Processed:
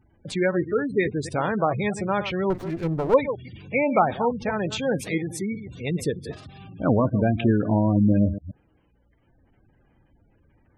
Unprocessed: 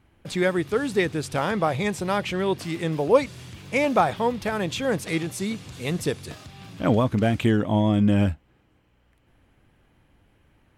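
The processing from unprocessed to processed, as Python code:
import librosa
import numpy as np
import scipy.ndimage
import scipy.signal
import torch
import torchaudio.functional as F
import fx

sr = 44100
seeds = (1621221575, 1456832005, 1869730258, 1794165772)

y = fx.reverse_delay(x, sr, ms=129, wet_db=-11.0)
y = fx.spec_gate(y, sr, threshold_db=-20, keep='strong')
y = fx.running_max(y, sr, window=17, at=(2.5, 3.14))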